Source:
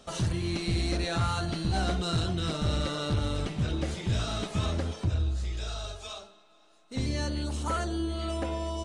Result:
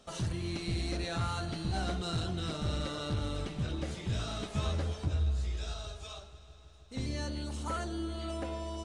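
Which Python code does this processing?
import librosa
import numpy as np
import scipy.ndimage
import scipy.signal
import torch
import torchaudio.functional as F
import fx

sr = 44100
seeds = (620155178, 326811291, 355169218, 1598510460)

y = fx.doubler(x, sr, ms=14.0, db=-3.5, at=(4.53, 5.74))
y = fx.echo_heads(y, sr, ms=159, heads='first and second', feedback_pct=74, wet_db=-22)
y = y * librosa.db_to_amplitude(-5.5)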